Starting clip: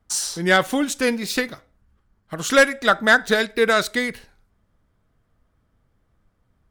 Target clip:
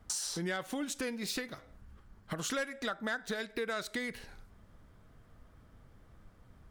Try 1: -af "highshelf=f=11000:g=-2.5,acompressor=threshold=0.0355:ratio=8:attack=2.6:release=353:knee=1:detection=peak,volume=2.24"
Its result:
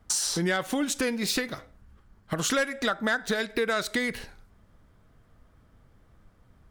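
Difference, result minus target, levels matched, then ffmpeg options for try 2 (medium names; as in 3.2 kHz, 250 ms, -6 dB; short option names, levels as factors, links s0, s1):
compression: peak gain reduction -9 dB
-af "highshelf=f=11000:g=-2.5,acompressor=threshold=0.0106:ratio=8:attack=2.6:release=353:knee=1:detection=peak,volume=2.24"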